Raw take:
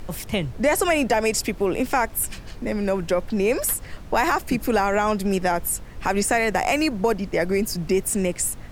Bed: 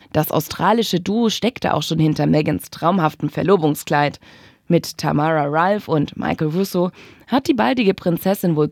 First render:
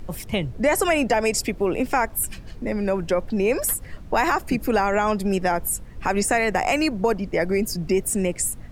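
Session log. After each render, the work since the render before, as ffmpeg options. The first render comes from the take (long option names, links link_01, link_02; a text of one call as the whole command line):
ffmpeg -i in.wav -af "afftdn=noise_reduction=7:noise_floor=-40" out.wav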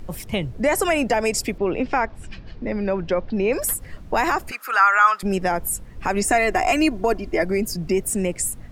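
ffmpeg -i in.wav -filter_complex "[0:a]asettb=1/sr,asplit=3[link_01][link_02][link_03];[link_01]atrim=end=1.584[link_04];[link_02]atrim=start=1.58:end=3.53,asetpts=PTS-STARTPTS,afade=type=in:duration=0.004:curve=qsin,afade=type=out:start_time=1.946:duration=0.004:curve=qsin,lowpass=frequency=4900:width=0.5412,lowpass=frequency=4900:width=1.3066[link_05];[link_03]atrim=start=3.526[link_06];[link_04][link_05]acrossfade=duration=0.004:curve1=hsin:curve2=qsin[link_07];[link_07][link_06]acrossfade=duration=0.004:curve1=qsin:curve2=hsin,asettb=1/sr,asplit=3[link_08][link_09][link_10];[link_08]atrim=end=4.514[link_11];[link_09]atrim=start=4.51:end=5.23,asetpts=PTS-STARTPTS,afade=type=in:duration=0.004:curve=qsin,afade=type=out:start_time=0.716:duration=0.004:curve=qsin,highpass=frequency=1300:width_type=q:width=7.1[link_12];[link_10]atrim=start=5.226[link_13];[link_11][link_12]acrossfade=duration=0.004:curve1=hsin:curve2=qsin[link_14];[link_14][link_13]acrossfade=duration=0.004:curve1=qsin:curve2=hsin,asettb=1/sr,asplit=3[link_15][link_16][link_17];[link_15]atrim=end=6.264[link_18];[link_16]atrim=start=6.26:end=7.43,asetpts=PTS-STARTPTS,afade=type=in:duration=0.004:curve=qsin,afade=type=out:start_time=1.166:duration=0.004:curve=qsin,aecho=1:1:2.9:0.65,atrim=end_sample=51597[link_19];[link_17]atrim=start=7.426[link_20];[link_18][link_19]acrossfade=duration=0.004:curve1=hsin:curve2=qsin[link_21];[link_21][link_20]acrossfade=duration=0.004:curve1=qsin:curve2=hsin" out.wav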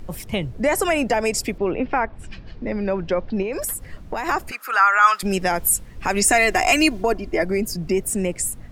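ffmpeg -i in.wav -filter_complex "[0:a]asplit=3[link_01][link_02][link_03];[link_01]afade=type=out:start_time=1.71:duration=0.02[link_04];[link_02]lowpass=2900,afade=type=in:start_time=1.71:duration=0.02,afade=type=out:start_time=2.18:duration=0.02[link_05];[link_03]afade=type=in:start_time=2.18:duration=0.02[link_06];[link_04][link_05][link_06]amix=inputs=3:normalize=0,asettb=1/sr,asplit=3[link_07][link_08][link_09];[link_07]atrim=end=3.424[link_10];[link_08]atrim=start=3.42:end=4.29,asetpts=PTS-STARTPTS,afade=type=in:duration=0.004:curve=qsin,afade=type=out:start_time=0.866:duration=0.004:curve=qsin,acompressor=threshold=-22dB:ratio=6:attack=3.2:release=140:knee=1:detection=peak[link_11];[link_09]atrim=start=4.286[link_12];[link_10][link_11]acrossfade=duration=0.004:curve1=hsin:curve2=qsin[link_13];[link_13][link_12]acrossfade=duration=0.004:curve1=qsin:curve2=hsin,asplit=3[link_14][link_15][link_16];[link_14]afade=type=out:start_time=5.02:duration=0.02[link_17];[link_15]adynamicequalizer=threshold=0.0251:dfrequency=1900:dqfactor=0.7:tfrequency=1900:tqfactor=0.7:attack=5:release=100:ratio=0.375:range=4:mode=boostabove:tftype=highshelf,afade=type=in:start_time=5.02:duration=0.02,afade=type=out:start_time=7.02:duration=0.02[link_18];[link_16]afade=type=in:start_time=7.02:duration=0.02[link_19];[link_17][link_18][link_19]amix=inputs=3:normalize=0" out.wav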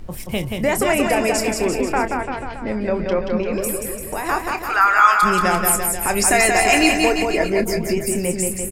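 ffmpeg -i in.wav -filter_complex "[0:a]asplit=2[link_01][link_02];[link_02]adelay=28,volume=-10dB[link_03];[link_01][link_03]amix=inputs=2:normalize=0,aecho=1:1:180|342|487.8|619|737.1:0.631|0.398|0.251|0.158|0.1" out.wav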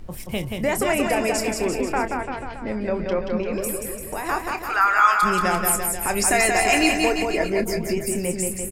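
ffmpeg -i in.wav -af "volume=-3.5dB" out.wav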